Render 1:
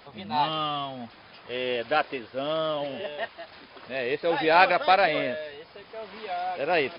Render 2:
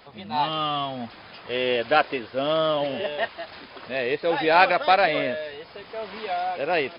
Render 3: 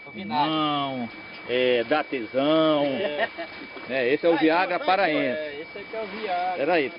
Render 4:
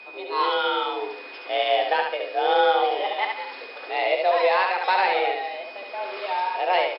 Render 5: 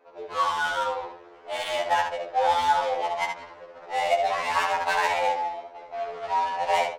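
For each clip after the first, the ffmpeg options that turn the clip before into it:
ffmpeg -i in.wav -af "dynaudnorm=framelen=160:gausssize=9:maxgain=6dB" out.wav
ffmpeg -i in.wav -af "equalizer=frequency=200:width_type=o:width=0.33:gain=5,equalizer=frequency=315:width_type=o:width=0.33:gain=11,equalizer=frequency=500:width_type=o:width=0.33:gain=3,equalizer=frequency=2000:width_type=o:width=0.33:gain=3,alimiter=limit=-10dB:level=0:latency=1:release=382,aeval=exprs='val(0)+0.00891*sin(2*PI*2300*n/s)':channel_layout=same" out.wav
ffmpeg -i in.wav -filter_complex "[0:a]afreqshift=190,asplit=2[link_01][link_02];[link_02]aecho=0:1:71|142|213|284:0.631|0.208|0.0687|0.0227[link_03];[link_01][link_03]amix=inputs=2:normalize=0,volume=-1dB" out.wav
ffmpeg -i in.wav -af "afreqshift=55,adynamicsmooth=sensitivity=2:basefreq=640,afftfilt=real='re*2*eq(mod(b,4),0)':imag='im*2*eq(mod(b,4),0)':win_size=2048:overlap=0.75,volume=1dB" out.wav

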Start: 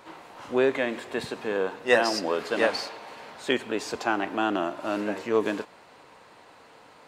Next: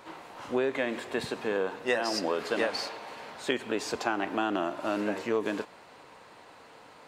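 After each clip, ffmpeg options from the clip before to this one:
ffmpeg -i in.wav -af "acompressor=threshold=-24dB:ratio=6" out.wav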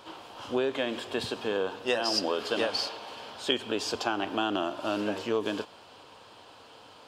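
ffmpeg -i in.wav -af "equalizer=frequency=100:width_type=o:width=0.33:gain=7,equalizer=frequency=160:width_type=o:width=0.33:gain=-5,equalizer=frequency=2000:width_type=o:width=0.33:gain=-9,equalizer=frequency=3150:width_type=o:width=0.33:gain=10,equalizer=frequency=5000:width_type=o:width=0.33:gain=6" out.wav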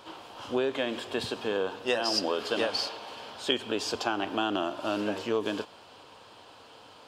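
ffmpeg -i in.wav -af anull out.wav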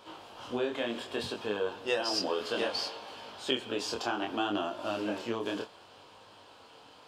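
ffmpeg -i in.wav -af "flanger=delay=19:depth=7.2:speed=0.64" out.wav

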